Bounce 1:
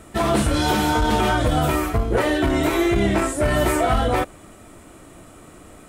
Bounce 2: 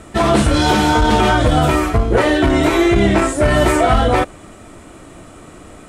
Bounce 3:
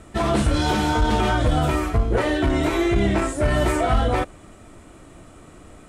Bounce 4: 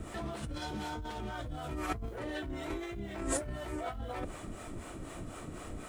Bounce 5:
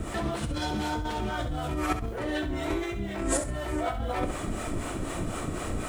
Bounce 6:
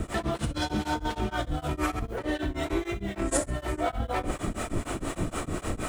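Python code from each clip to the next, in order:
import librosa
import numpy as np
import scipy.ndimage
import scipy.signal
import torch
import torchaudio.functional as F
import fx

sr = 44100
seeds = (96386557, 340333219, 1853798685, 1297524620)

y1 = scipy.signal.sosfilt(scipy.signal.butter(2, 8600.0, 'lowpass', fs=sr, output='sos'), x)
y1 = F.gain(torch.from_numpy(y1), 6.0).numpy()
y2 = fx.low_shelf(y1, sr, hz=110.0, db=5.5)
y2 = F.gain(torch.from_numpy(y2), -8.0).numpy()
y3 = fx.over_compress(y2, sr, threshold_db=-30.0, ratio=-1.0)
y3 = fx.quant_dither(y3, sr, seeds[0], bits=10, dither='none')
y3 = fx.harmonic_tremolo(y3, sr, hz=4.0, depth_pct=70, crossover_hz=430.0)
y3 = F.gain(torch.from_numpy(y3), -5.0).numpy()
y4 = fx.rider(y3, sr, range_db=3, speed_s=0.5)
y4 = fx.echo_feedback(y4, sr, ms=66, feedback_pct=27, wet_db=-10.0)
y4 = F.gain(torch.from_numpy(y4), 8.0).numpy()
y5 = y4 * np.abs(np.cos(np.pi * 6.5 * np.arange(len(y4)) / sr))
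y5 = F.gain(torch.from_numpy(y5), 3.5).numpy()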